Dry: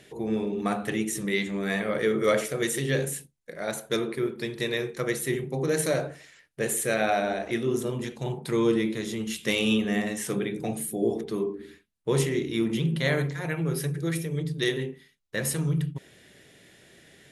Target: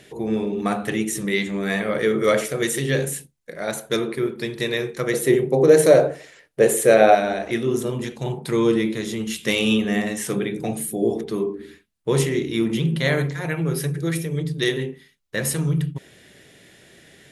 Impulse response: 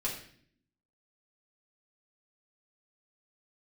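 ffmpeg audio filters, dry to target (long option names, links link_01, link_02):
-filter_complex "[0:a]asettb=1/sr,asplit=3[link_01][link_02][link_03];[link_01]atrim=end=5.134[link_04];[link_02]atrim=start=5.13:end=7.15,asetpts=PTS-STARTPTS,afade=type=in:duration=0.004:curve=qsin,afade=type=out:start_time=2.016:duration=0.004:curve=qsin,equalizer=frequency=500:width=0.91:gain=10.5[link_05];[link_03]atrim=start=7.146[link_06];[link_04][link_05]acrossfade=duration=0.004:curve1=hsin:curve2=qsin[link_07];[link_07][link_06]acrossfade=duration=0.004:curve1=qsin:curve2=hsin,volume=4.5dB"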